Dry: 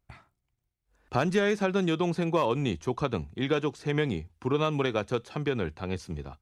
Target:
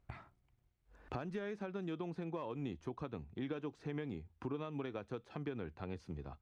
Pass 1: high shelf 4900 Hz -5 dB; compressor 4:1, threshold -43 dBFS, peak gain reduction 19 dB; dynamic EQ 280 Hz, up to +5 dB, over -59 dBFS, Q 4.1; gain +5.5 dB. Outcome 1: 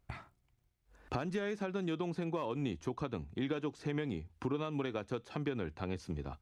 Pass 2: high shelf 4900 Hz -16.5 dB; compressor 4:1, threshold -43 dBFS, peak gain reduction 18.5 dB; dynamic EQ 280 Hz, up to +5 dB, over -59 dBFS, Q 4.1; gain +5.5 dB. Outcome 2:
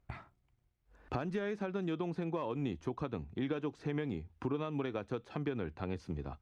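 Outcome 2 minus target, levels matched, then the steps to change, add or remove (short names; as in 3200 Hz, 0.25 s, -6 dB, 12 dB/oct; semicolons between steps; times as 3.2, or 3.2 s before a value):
compressor: peak gain reduction -5 dB
change: compressor 4:1, threshold -50 dBFS, peak gain reduction 24 dB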